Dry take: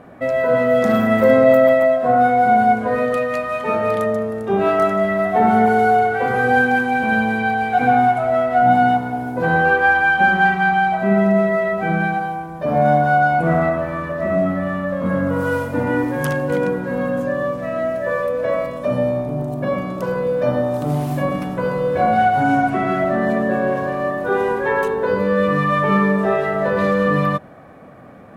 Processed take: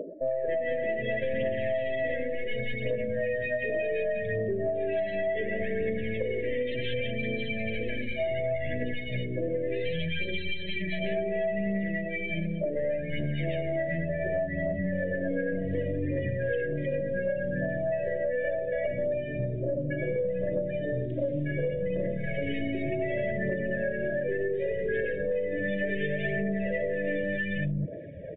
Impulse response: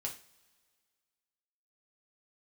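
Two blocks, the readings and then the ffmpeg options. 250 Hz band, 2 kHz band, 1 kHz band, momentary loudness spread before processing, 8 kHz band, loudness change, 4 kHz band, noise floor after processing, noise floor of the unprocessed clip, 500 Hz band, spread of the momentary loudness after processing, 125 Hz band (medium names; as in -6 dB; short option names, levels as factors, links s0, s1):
-13.5 dB, -14.0 dB, under -25 dB, 8 LU, no reading, -13.0 dB, -4.5 dB, -34 dBFS, -29 dBFS, -10.5 dB, 2 LU, -9.0 dB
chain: -filter_complex "[0:a]acompressor=mode=upward:threshold=0.0708:ratio=2.5,acrossover=split=240|810[s0][s1][s2];[s2]adelay=280[s3];[s0]adelay=480[s4];[s4][s1][s3]amix=inputs=3:normalize=0,aeval=exprs='(tanh(6.31*val(0)+0.3)-tanh(0.3))/6.31':c=same,aphaser=in_gain=1:out_gain=1:delay=3.9:decay=0.43:speed=0.68:type=triangular,equalizer=f=240:t=o:w=0.28:g=-10.5,afftfilt=real='re*(1-between(b*sr/4096,670,1600))':imag='im*(1-between(b*sr/4096,670,1600))':win_size=4096:overlap=0.75,afftdn=nr=14:nf=-33,acompressor=threshold=0.0562:ratio=12" -ar 8000 -c:a libmp3lame -b:a 24k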